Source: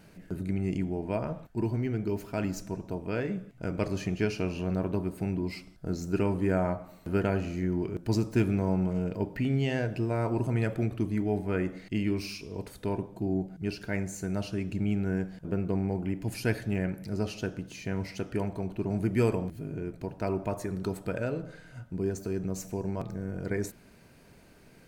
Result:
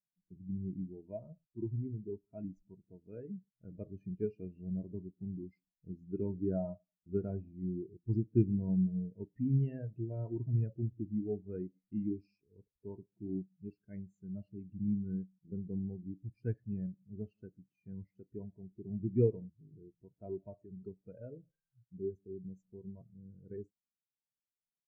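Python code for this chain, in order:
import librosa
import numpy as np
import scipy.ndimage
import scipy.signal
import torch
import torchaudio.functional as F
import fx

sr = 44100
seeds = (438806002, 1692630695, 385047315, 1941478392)

y = fx.spectral_expand(x, sr, expansion=2.5)
y = F.gain(torch.from_numpy(y), -3.0).numpy()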